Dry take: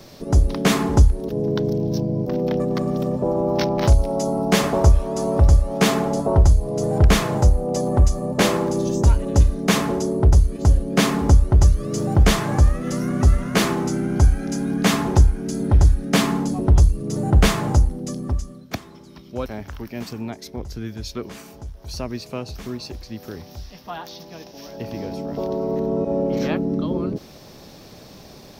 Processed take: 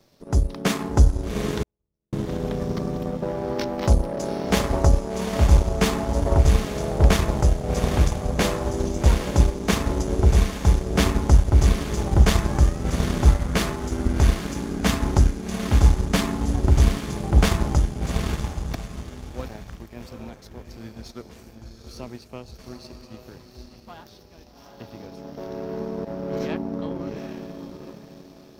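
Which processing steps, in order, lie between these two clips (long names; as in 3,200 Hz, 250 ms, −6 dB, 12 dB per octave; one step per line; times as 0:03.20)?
feedback delay with all-pass diffusion 788 ms, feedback 42%, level −4.5 dB
0:01.63–0:02.13: noise gate −7 dBFS, range −42 dB
power curve on the samples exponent 1.4
level −1 dB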